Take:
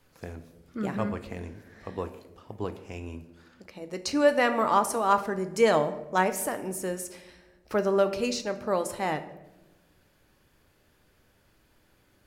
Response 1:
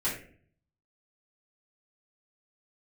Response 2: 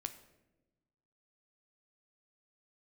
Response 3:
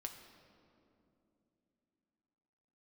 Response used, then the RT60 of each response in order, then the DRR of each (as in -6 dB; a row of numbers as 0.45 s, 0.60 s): 2; 0.50 s, 1.0 s, 3.0 s; -11.0 dB, 8.5 dB, 4.0 dB